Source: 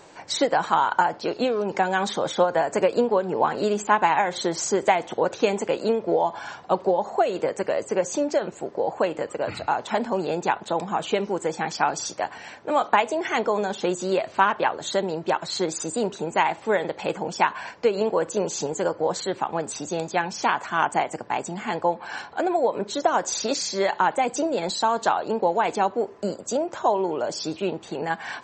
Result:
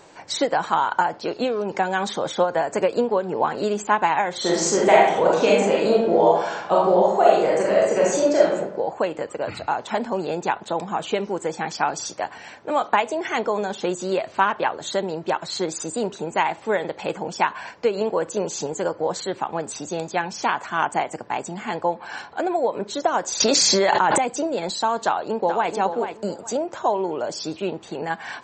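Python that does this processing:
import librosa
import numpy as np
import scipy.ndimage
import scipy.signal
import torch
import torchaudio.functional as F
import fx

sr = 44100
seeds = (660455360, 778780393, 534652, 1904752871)

y = fx.reverb_throw(x, sr, start_s=4.38, length_s=4.17, rt60_s=0.83, drr_db=-5.0)
y = fx.env_flatten(y, sr, amount_pct=100, at=(23.4, 24.18))
y = fx.echo_throw(y, sr, start_s=25.05, length_s=0.68, ms=430, feedback_pct=25, wet_db=-8.0)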